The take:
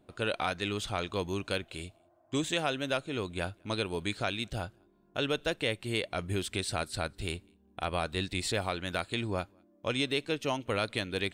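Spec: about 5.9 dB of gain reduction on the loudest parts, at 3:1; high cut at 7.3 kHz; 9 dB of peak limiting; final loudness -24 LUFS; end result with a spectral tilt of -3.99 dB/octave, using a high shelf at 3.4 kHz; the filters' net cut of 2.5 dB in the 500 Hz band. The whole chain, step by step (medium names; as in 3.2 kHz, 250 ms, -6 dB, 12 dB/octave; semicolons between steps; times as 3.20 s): low-pass 7.3 kHz; peaking EQ 500 Hz -3 dB; treble shelf 3.4 kHz -4 dB; compression 3:1, threshold -36 dBFS; trim +18.5 dB; peak limiter -11.5 dBFS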